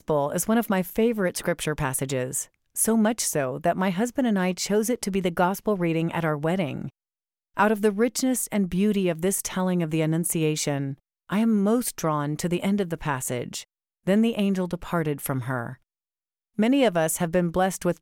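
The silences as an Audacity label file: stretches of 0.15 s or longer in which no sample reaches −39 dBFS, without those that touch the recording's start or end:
2.440000	2.760000	silence
6.890000	7.570000	silence
10.940000	11.290000	silence
13.630000	14.070000	silence
15.740000	16.580000	silence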